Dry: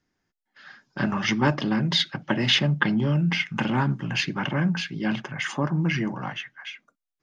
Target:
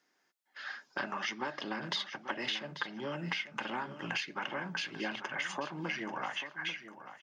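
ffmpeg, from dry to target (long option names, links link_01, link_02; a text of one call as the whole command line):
ffmpeg -i in.wav -af "highpass=460,acompressor=threshold=-38dB:ratio=12,aecho=1:1:840|1680:0.251|0.0427,volume=4.5dB" out.wav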